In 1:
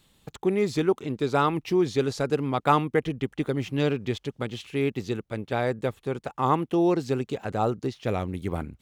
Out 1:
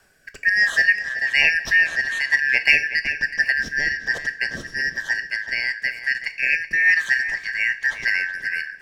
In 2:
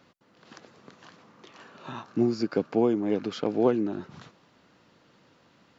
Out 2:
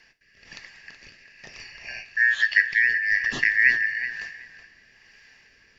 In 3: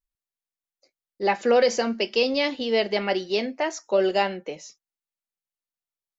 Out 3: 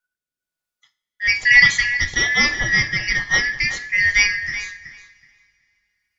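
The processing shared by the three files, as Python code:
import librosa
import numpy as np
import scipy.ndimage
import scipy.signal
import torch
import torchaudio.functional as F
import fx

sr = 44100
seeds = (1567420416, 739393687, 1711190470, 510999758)

y = fx.band_shuffle(x, sr, order='3142')
y = fx.low_shelf(y, sr, hz=85.0, db=8.5)
y = fx.rotary(y, sr, hz=1.1)
y = fx.echo_filtered(y, sr, ms=374, feedback_pct=18, hz=4800.0, wet_db=-11)
y = fx.rev_double_slope(y, sr, seeds[0], early_s=0.38, late_s=2.9, knee_db=-21, drr_db=9.5)
y = y * 10.0 ** (7.0 / 20.0)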